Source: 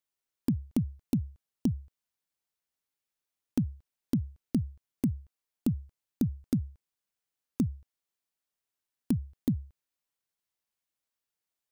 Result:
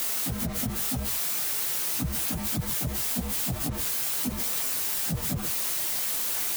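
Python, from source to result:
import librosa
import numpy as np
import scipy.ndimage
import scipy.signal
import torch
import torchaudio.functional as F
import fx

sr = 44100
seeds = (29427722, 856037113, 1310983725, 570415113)

p1 = x + 0.5 * 10.0 ** (-30.0 / 20.0) * np.sign(x)
p2 = fx.highpass(p1, sr, hz=120.0, slope=6)
p3 = fx.high_shelf(p2, sr, hz=8300.0, db=10.5)
p4 = fx.rider(p3, sr, range_db=10, speed_s=0.5)
p5 = p3 + (p4 * 10.0 ** (1.0 / 20.0))
p6 = 10.0 ** (-24.0 / 20.0) * np.tanh(p5 / 10.0 ** (-24.0 / 20.0))
p7 = fx.stretch_vocoder_free(p6, sr, factor=0.56)
p8 = fx.chorus_voices(p7, sr, voices=6, hz=0.91, base_ms=20, depth_ms=4.6, mix_pct=55)
p9 = p8 + fx.echo_single(p8, sr, ms=133, db=-16.5, dry=0)
p10 = fx.env_flatten(p9, sr, amount_pct=50)
y = p10 * 10.0 ** (3.5 / 20.0)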